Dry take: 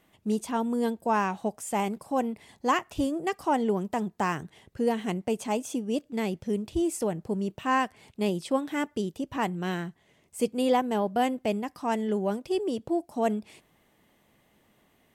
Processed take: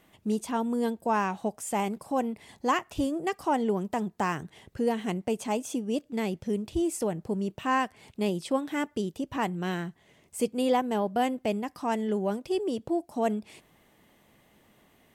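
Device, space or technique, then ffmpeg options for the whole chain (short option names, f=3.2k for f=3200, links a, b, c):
parallel compression: -filter_complex "[0:a]asplit=2[a][b];[b]acompressor=threshold=-40dB:ratio=6,volume=-1.5dB[c];[a][c]amix=inputs=2:normalize=0,volume=-2dB"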